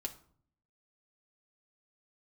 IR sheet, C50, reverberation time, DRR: 14.5 dB, 0.55 s, 1.0 dB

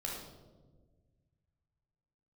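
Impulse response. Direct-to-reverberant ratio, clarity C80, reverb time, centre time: -3.0 dB, 4.0 dB, 1.4 s, 61 ms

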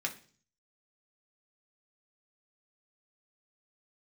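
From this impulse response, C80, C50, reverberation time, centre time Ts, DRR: 18.5 dB, 14.0 dB, 0.45 s, 9 ms, 1.0 dB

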